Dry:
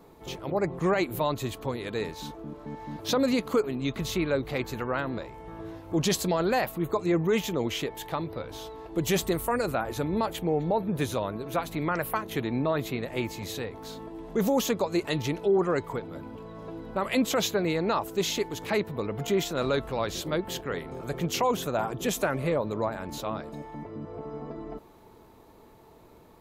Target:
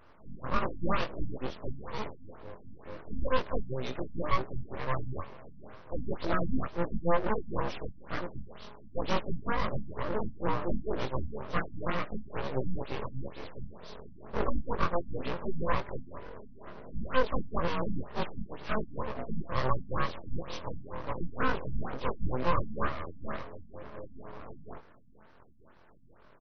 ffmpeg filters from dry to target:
-filter_complex "[0:a]afftfilt=real='re':imag='-im':win_size=2048:overlap=0.75,adynamicequalizer=threshold=0.00562:dfrequency=150:dqfactor=1.2:tfrequency=150:tqfactor=1.2:attack=5:release=100:ratio=0.375:range=2:mode=boostabove:tftype=bell,asplit=2[a][b];[b]adelay=437.3,volume=-23dB,highshelf=f=4k:g=-9.84[c];[a][c]amix=inputs=2:normalize=0,acrossover=split=390|1700|4900[d][e][f][g];[d]aeval=exprs='abs(val(0))':c=same[h];[h][e][f][g]amix=inputs=4:normalize=0,equalizer=f=570:w=2.1:g=10.5,bandreject=f=417:t=h:w=4,bandreject=f=834:t=h:w=4,bandreject=f=1.251k:t=h:w=4,bandreject=f=1.668k:t=h:w=4,bandreject=f=2.085k:t=h:w=4,bandreject=f=2.502k:t=h:w=4,bandreject=f=2.919k:t=h:w=4,bandreject=f=3.336k:t=h:w=4,bandreject=f=3.753k:t=h:w=4,bandreject=f=4.17k:t=h:w=4,aeval=exprs='abs(val(0))':c=same,afftfilt=real='re*lt(b*sr/1024,270*pow(6300/270,0.5+0.5*sin(2*PI*2.1*pts/sr)))':imag='im*lt(b*sr/1024,270*pow(6300/270,0.5+0.5*sin(2*PI*2.1*pts/sr)))':win_size=1024:overlap=0.75"

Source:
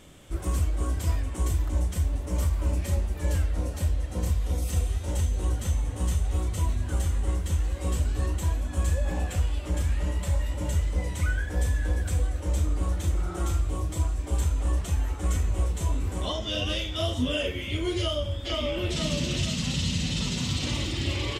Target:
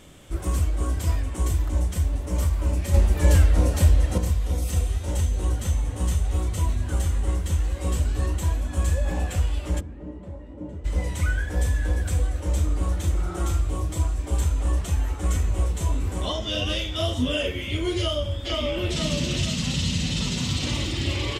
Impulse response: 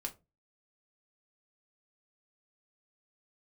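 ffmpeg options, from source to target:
-filter_complex "[0:a]asettb=1/sr,asplit=3[a][b][c];[a]atrim=end=2.944[d];[b]atrim=start=2.94:end=4.18,asetpts=PTS-STARTPTS,afade=t=in:d=0.004:c=qsin,afade=t=out:st=1.236:d=0.004:c=qsin,acontrast=80[e];[c]atrim=start=4.176[f];[d][e]acrossfade=d=0.004:c1=hsin:c2=qsin[g];[g][f]acrossfade=d=0.004:c1=qsin:c2=hsin,asplit=3[h][i][j];[h]afade=t=out:st=9.79:d=0.02[k];[i]bandpass=f=300:t=q:w=1.5:csg=0,afade=t=in:st=9.79:d=0.02,afade=t=out:st=10.84:d=0.02[l];[j]afade=t=in:st=10.84:d=0.02[m];[k][l][m]amix=inputs=3:normalize=0,volume=2.5dB"

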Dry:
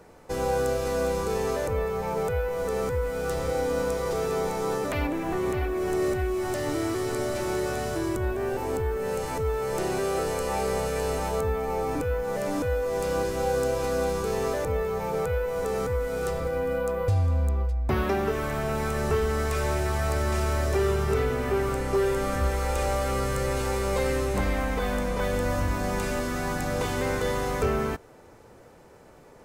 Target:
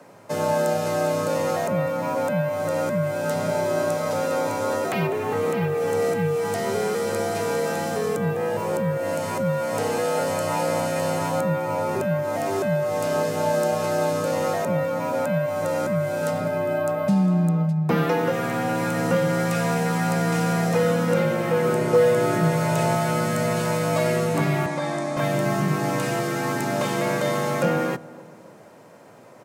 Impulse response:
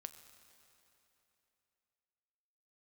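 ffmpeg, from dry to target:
-filter_complex "[0:a]asettb=1/sr,asplit=3[a][b][c];[a]atrim=end=21.644[d];[b]atrim=start=21.64:end=22.95,asetpts=PTS-STARTPTS,afade=t=in:d=0.004:c=qsin,afade=t=out:st=1.306:d=0.004:c=qsin,equalizer=f=290:t=o:w=0.95:g=6.5[e];[c]atrim=start=22.946[f];[d][e]acrossfade=d=0.004:c1=hsin:c2=qsin[g];[g][f]acrossfade=d=0.004:c1=qsin:c2=hsin,afreqshift=97,asettb=1/sr,asplit=3[h][i][j];[h]atrim=end=24.664[k];[i]atrim=start=24.66:end=25.17,asetpts=PTS-STARTPTS,afade=t=in:d=0.004:c=qsin,afade=t=out:st=0.506:d=0.004:c=qsin,highpass=f=190:w=0.5412,highpass=f=190:w=1.3066,equalizer=f=400:t=q:w=4:g=-9,equalizer=f=1.4k:t=q:w=4:g=-6,equalizer=f=2.8k:t=q:w=4:g=-10,lowpass=f=9.5k:w=0.5412,lowpass=f=9.5k:w=1.3066[l];[j]atrim=start=25.166[m];[k][l]acrossfade=d=0.004:c1=hsin:c2=qsin[n];[n][m]acrossfade=d=0.004:c1=qsin:c2=hsin,asplit=2[o][p];[p]adelay=278,lowpass=f=1k:p=1,volume=-18.5dB,asplit=2[q][r];[r]adelay=278,lowpass=f=1k:p=1,volume=0.48,asplit=2[s][t];[t]adelay=278,lowpass=f=1k:p=1,volume=0.48,asplit=2[u][v];[v]adelay=278,lowpass=f=1k:p=1,volume=0.48[w];[o][q][s][u][w]amix=inputs=5:normalize=0,volume=3.5dB"

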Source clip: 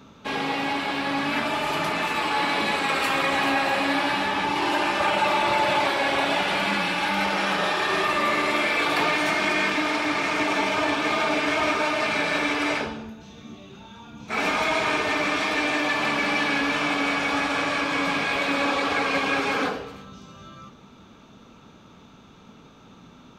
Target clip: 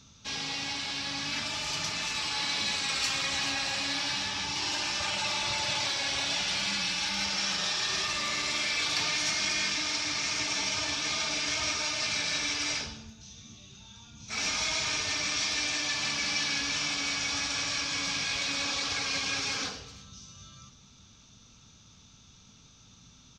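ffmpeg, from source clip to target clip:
-af "firequalizer=gain_entry='entry(110,0);entry(160,-8);entry(340,-17);entry(5700,12);entry(11000,-11)':delay=0.05:min_phase=1,volume=-1dB"

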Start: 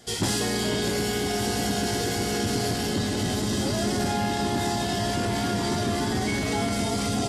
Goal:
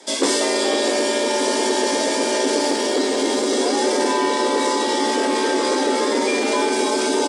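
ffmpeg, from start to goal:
-filter_complex "[0:a]afreqshift=170,aresample=22050,aresample=44100,asettb=1/sr,asplit=3[a][b][c];[a]atrim=end=2.594[d];[b]atrim=start=2.59:end=3.57,asetpts=PTS-STARTPTS,afade=t=in:d=0.004:c=qsin,afade=t=out:st=0.976:d=0.004:c=qsin,aeval=exprs='sgn(val(0))*max(abs(val(0))-0.00126,0)':c=same[e];[c]atrim=start=3.566[f];[d][e]acrossfade=d=0.004:c1=hsin:c2=qsin[g];[g][f]acrossfade=d=0.004:c1=qsin:c2=hsin,volume=6.5dB"

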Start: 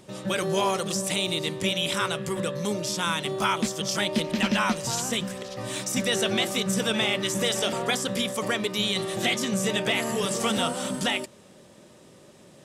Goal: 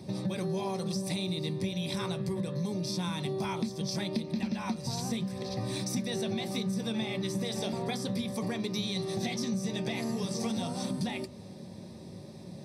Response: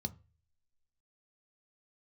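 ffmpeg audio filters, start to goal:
-filter_complex "[0:a]asettb=1/sr,asplit=3[a][b][c];[a]atrim=end=8.604[d];[b]atrim=start=8.6:end=10.85,asetpts=PTS-STARTPTS,afade=t=in:d=0.004:c=qsin,afade=t=out:st=2.246:d=0.004:c=qsin,equalizer=f=5.9k:w=2.2:g=6[e];[c]atrim=start=10.846[f];[d][e]acrossfade=d=0.004:c1=hsin:c2=qsin[g];[g][f]acrossfade=d=0.004:c1=qsin:c2=hsin[h];[1:a]atrim=start_sample=2205[i];[h][i]afir=irnorm=-1:irlink=0,acompressor=threshold=-31dB:ratio=5"

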